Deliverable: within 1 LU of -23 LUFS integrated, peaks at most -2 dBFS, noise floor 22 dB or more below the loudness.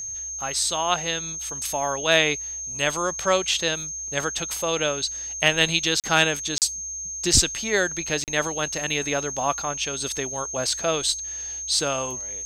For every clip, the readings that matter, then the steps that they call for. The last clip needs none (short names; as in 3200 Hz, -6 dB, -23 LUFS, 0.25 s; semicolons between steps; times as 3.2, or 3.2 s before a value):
dropouts 3; longest dropout 38 ms; steady tone 6400 Hz; tone level -30 dBFS; loudness -23.5 LUFS; peak -4.5 dBFS; loudness target -23.0 LUFS
-> interpolate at 6/6.58/8.24, 38 ms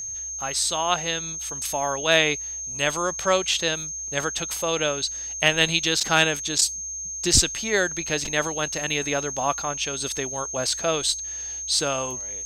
dropouts 0; steady tone 6400 Hz; tone level -30 dBFS
-> notch 6400 Hz, Q 30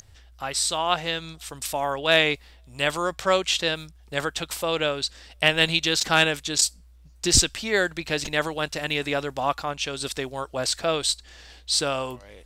steady tone none; loudness -24.0 LUFS; peak -4.5 dBFS; loudness target -23.0 LUFS
-> gain +1 dB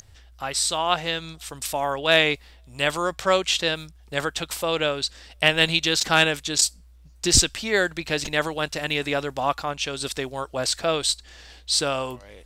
loudness -23.0 LUFS; peak -3.5 dBFS; noise floor -51 dBFS